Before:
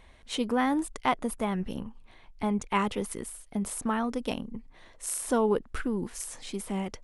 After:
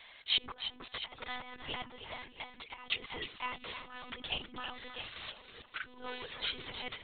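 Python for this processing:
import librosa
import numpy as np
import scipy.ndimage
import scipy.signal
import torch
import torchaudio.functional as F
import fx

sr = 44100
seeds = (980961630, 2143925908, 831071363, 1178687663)

p1 = x + 10.0 ** (-14.0 / 20.0) * np.pad(x, (int(689 * sr / 1000.0), 0))[:len(x)]
p2 = fx.over_compress(p1, sr, threshold_db=-34.0, ratio=-0.5)
p3 = np.diff(p2, prepend=0.0)
p4 = p3 + fx.echo_feedback(p3, sr, ms=313, feedback_pct=25, wet_db=-9.5, dry=0)
p5 = fx.lpc_monotone(p4, sr, seeds[0], pitch_hz=250.0, order=16)
y = F.gain(torch.from_numpy(p5), 13.0).numpy()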